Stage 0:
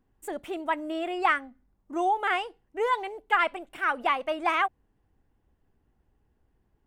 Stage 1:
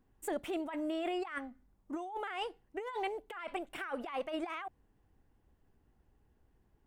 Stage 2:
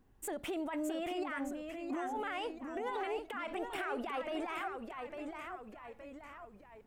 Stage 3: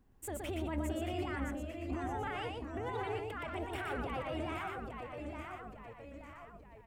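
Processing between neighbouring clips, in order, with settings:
compressor whose output falls as the input rises −33 dBFS, ratio −1; level −5.5 dB
brickwall limiter −34.5 dBFS, peak gain reduction 11 dB; delay with pitch and tempo change per echo 599 ms, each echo −1 semitone, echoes 3, each echo −6 dB; level +3.5 dB
sub-octave generator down 2 octaves, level +2 dB; single-tap delay 120 ms −3.5 dB; level −2.5 dB

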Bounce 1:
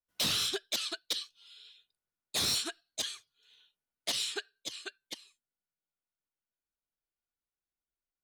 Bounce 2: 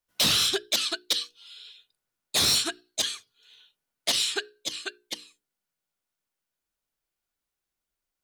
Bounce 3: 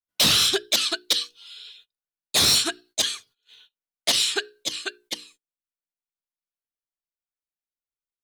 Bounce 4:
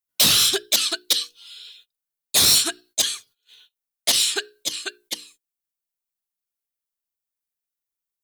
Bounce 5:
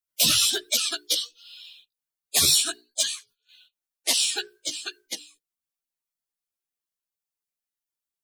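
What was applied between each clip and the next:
mains-hum notches 60/120/180/240/300/360/420/480 Hz; level +8 dB
noise gate −56 dBFS, range −20 dB; level +4 dB
high-shelf EQ 7,700 Hz +12 dB; level −1 dB
spectral magnitudes quantised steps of 30 dB; multi-voice chorus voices 2, 1.3 Hz, delay 14 ms, depth 3 ms

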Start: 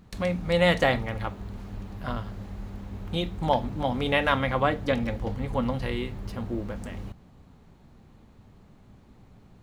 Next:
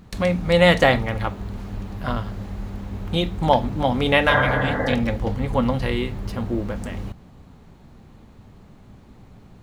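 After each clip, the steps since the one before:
healed spectral selection 0:04.33–0:04.91, 240–2,100 Hz both
level +6.5 dB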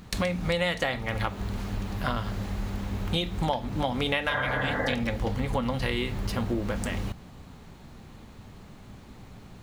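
tilt shelving filter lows −3.5 dB, about 1,300 Hz
downward compressor 8 to 1, threshold −27 dBFS, peak gain reduction 16 dB
level +3 dB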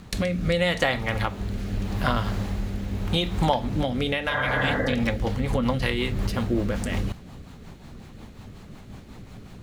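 rotating-speaker cabinet horn 0.8 Hz, later 5.5 Hz, at 0:04.51
level +5.5 dB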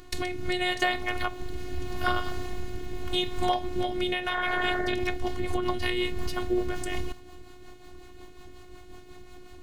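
phases set to zero 361 Hz

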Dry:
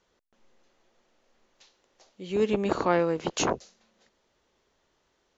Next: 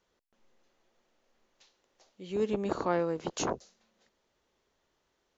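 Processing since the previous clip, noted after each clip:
dynamic equaliser 2,500 Hz, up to −5 dB, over −46 dBFS, Q 1.3
level −5 dB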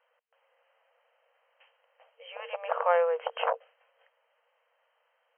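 brick-wall band-pass 460–3,200 Hz
level +6.5 dB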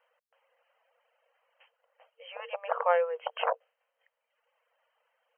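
reverb reduction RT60 1.1 s

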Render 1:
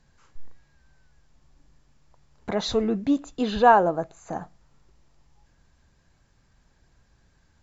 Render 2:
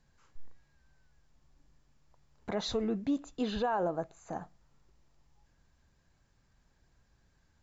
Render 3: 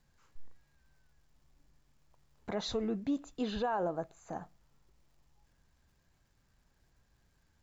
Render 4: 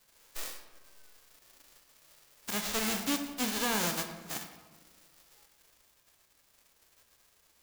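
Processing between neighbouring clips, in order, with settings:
brickwall limiter −16 dBFS, peak gain reduction 11.5 dB; level −7 dB
surface crackle 420 per second −66 dBFS; level −2 dB
spectral envelope flattened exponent 0.1; hard clipping −26.5 dBFS, distortion −12 dB; convolution reverb RT60 1.3 s, pre-delay 21 ms, DRR 6 dB; level +2.5 dB

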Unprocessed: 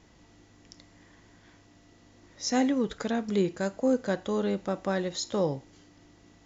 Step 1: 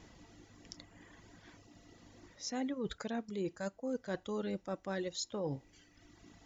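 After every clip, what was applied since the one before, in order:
reverb reduction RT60 1.1 s
reversed playback
downward compressor 6 to 1, threshold −37 dBFS, peak gain reduction 15.5 dB
reversed playback
level +1.5 dB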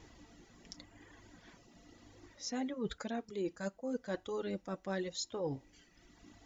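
flanger 0.92 Hz, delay 2.1 ms, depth 3.5 ms, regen −37%
level +3.5 dB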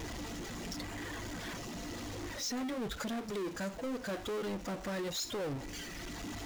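downward compressor, threshold −40 dBFS, peak gain reduction 8.5 dB
power curve on the samples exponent 0.35
level −2 dB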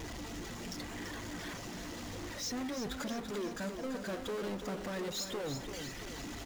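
repeating echo 337 ms, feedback 55%, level −8 dB
level −1.5 dB

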